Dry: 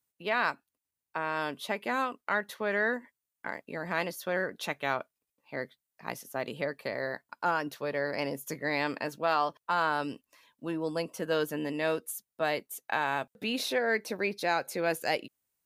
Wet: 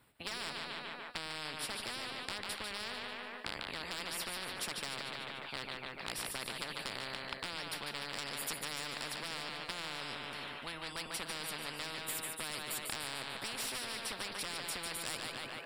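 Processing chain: compressor 4:1, threshold -33 dBFS, peak gain reduction 9.5 dB; wavefolder -28.5 dBFS; running mean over 7 samples; on a send: split-band echo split 430 Hz, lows 0.102 s, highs 0.147 s, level -8.5 dB; on the sum: spectral compressor 10:1; gain +6 dB

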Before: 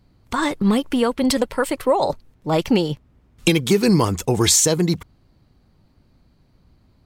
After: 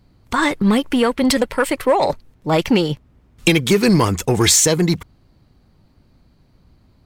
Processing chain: in parallel at -5 dB: overloaded stage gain 15.5 dB; on the sum: dynamic EQ 2000 Hz, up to +5 dB, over -34 dBFS, Q 1.4; gain -1 dB

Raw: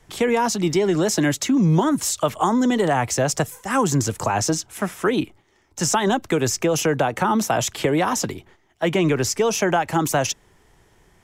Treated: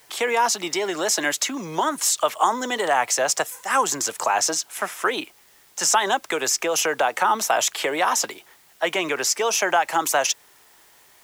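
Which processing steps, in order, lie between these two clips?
HPF 670 Hz 12 dB/oct; in parallel at -7.5 dB: requantised 8-bit, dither triangular

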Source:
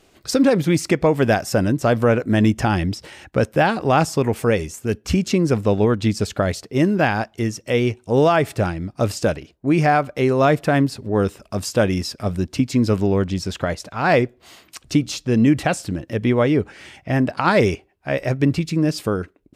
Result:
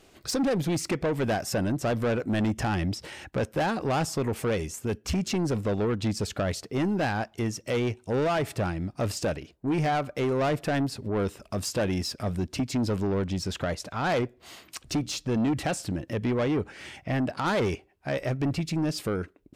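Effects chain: in parallel at -2.5 dB: compressor, threshold -29 dBFS, peak gain reduction 17 dB; on the sum: soft clip -15.5 dBFS, distortion -11 dB; gain -6 dB

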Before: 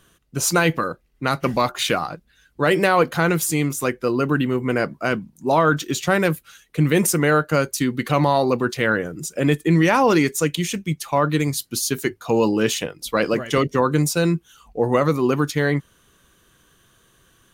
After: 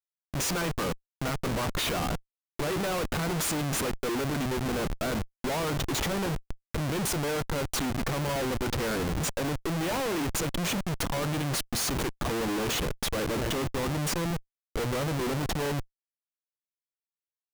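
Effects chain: 9.6–10.32 notches 50/100/150/200/250/300 Hz; compressor 5:1, threshold -24 dBFS, peak gain reduction 11.5 dB; narrowing echo 0.337 s, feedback 84%, band-pass 1500 Hz, level -23 dB; Schmitt trigger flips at -33 dBFS

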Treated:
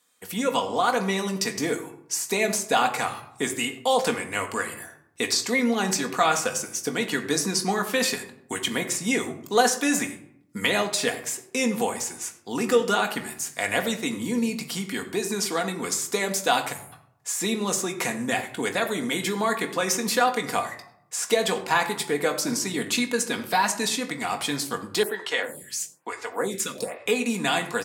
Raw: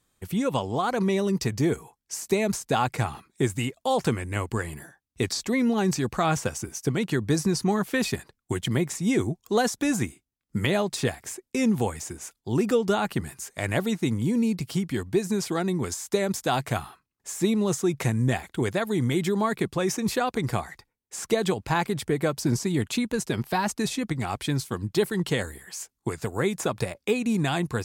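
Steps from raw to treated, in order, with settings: weighting filter A; 16.72–16.92 spectral delete 200–6600 Hz; high shelf 8800 Hz +10 dB; doubler 21 ms -10.5 dB; reverb RT60 0.70 s, pre-delay 4 ms, DRR 4 dB; 25.03–27.06 photocell phaser 1.1 Hz; gain +2.5 dB

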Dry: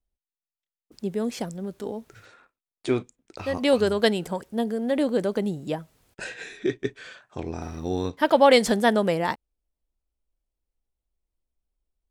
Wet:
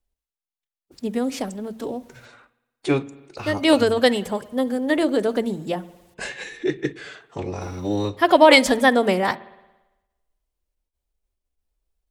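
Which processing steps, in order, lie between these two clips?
bell 200 Hz -2 dB; notches 50/100/150/200/250/300 Hz; spring tank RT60 1.1 s, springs 56 ms, chirp 25 ms, DRR 18.5 dB; formant-preserving pitch shift +2 st; gain +4.5 dB

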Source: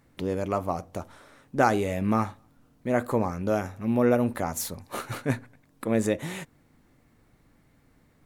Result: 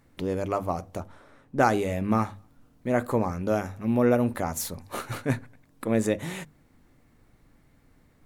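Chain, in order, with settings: low shelf 69 Hz +6.5 dB; notches 50/100/150/200 Hz; 1–2.29 mismatched tape noise reduction decoder only

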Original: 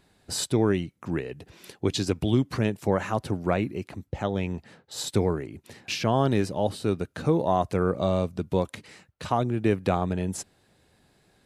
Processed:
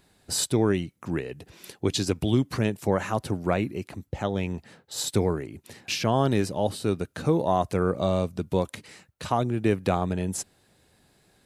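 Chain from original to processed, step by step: high shelf 6600 Hz +6.5 dB

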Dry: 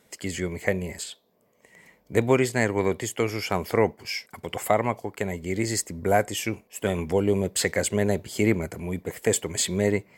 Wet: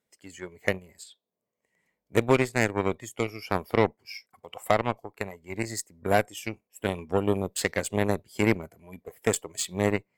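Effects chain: added harmonics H 3 -31 dB, 6 -42 dB, 7 -21 dB, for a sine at -6 dBFS; spectral noise reduction 10 dB

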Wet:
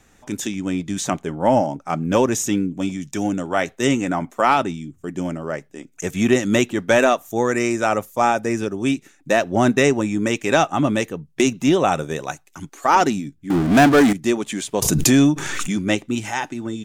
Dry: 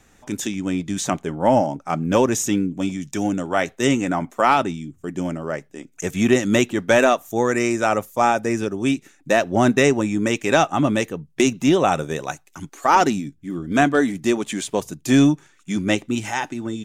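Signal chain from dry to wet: 13.5–14.13 power-law curve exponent 0.5; 14.82–15.78 backwards sustainer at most 23 dB/s

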